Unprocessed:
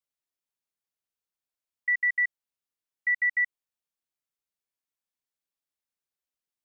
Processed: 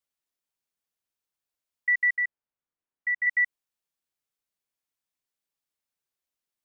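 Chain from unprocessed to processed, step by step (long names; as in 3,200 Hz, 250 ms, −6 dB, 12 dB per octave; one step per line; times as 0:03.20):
0:02.16–0:03.27: low-pass filter 1,800 Hz 12 dB per octave
level +2 dB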